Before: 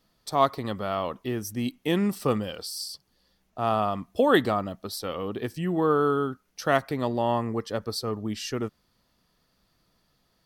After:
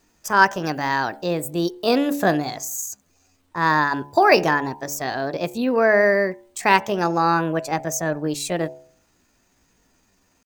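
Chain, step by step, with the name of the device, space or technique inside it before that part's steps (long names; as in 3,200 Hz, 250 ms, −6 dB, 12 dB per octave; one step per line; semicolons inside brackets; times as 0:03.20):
chipmunk voice (pitch shifter +6 semitones)
hum removal 71.63 Hz, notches 14
0:00.66–0:01.21: high-shelf EQ 10,000 Hz +7 dB
level +6.5 dB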